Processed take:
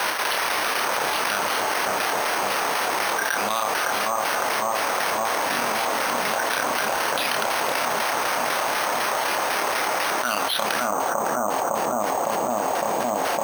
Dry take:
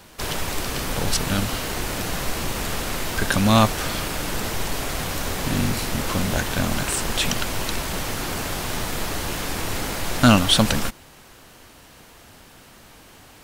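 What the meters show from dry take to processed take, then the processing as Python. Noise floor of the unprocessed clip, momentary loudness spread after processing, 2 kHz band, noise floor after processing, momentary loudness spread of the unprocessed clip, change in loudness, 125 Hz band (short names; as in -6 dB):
-48 dBFS, 1 LU, +4.5 dB, -25 dBFS, 10 LU, +0.5 dB, -19.5 dB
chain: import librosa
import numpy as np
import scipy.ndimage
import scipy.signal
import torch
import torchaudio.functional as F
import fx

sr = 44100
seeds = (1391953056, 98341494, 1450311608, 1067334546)

p1 = fx.chopper(x, sr, hz=4.0, depth_pct=65, duty_pct=40)
p2 = fx.bandpass_edges(p1, sr, low_hz=790.0, high_hz=2600.0)
p3 = fx.doubler(p2, sr, ms=29.0, db=-8)
p4 = p3 + fx.echo_bbd(p3, sr, ms=558, stages=4096, feedback_pct=75, wet_db=-3.5, dry=0)
p5 = np.repeat(p4[::6], 6)[:len(p4)]
p6 = fx.env_flatten(p5, sr, amount_pct=100)
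y = F.gain(torch.from_numpy(p6), -5.0).numpy()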